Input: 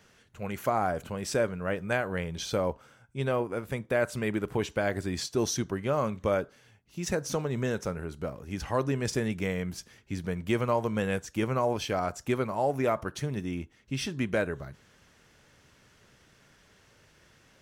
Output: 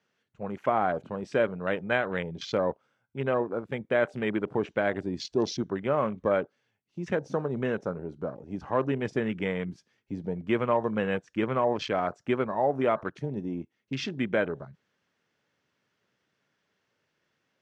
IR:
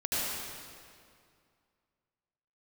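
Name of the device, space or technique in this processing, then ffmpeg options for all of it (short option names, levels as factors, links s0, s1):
over-cleaned archive recording: -filter_complex "[0:a]highpass=160,lowpass=5100,afwtdn=0.01,asettb=1/sr,asplit=3[s0][s1][s2];[s0]atrim=end=0.894[s3];[s1]atrim=start=0.89:end=2.21,asetpts=PTS-STARTPTS,afade=t=in:d=0.004:c=qsin,afade=t=out:st=1.316:d=0.004:c=qsin,equalizer=f=3300:t=o:w=1.5:g=3[s4];[s2]atrim=start=2.206[s5];[s3][s4]acrossfade=d=0.004:c1=hsin:c2=qsin[s6];[s6][s5]acrossfade=d=0.004:c1=qsin:c2=hsin,volume=1.26"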